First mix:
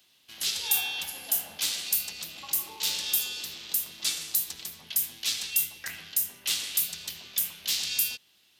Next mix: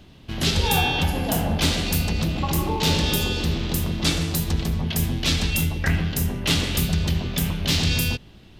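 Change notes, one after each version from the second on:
master: remove differentiator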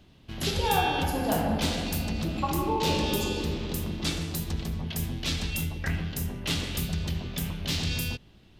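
background -8.0 dB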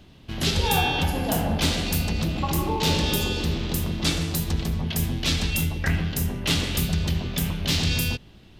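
background +6.0 dB

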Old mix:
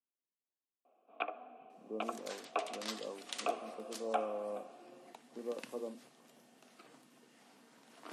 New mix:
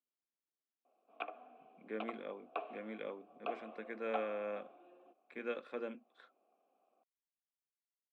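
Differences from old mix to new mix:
speech: remove brick-wall FIR low-pass 1200 Hz; first sound -5.0 dB; second sound: muted

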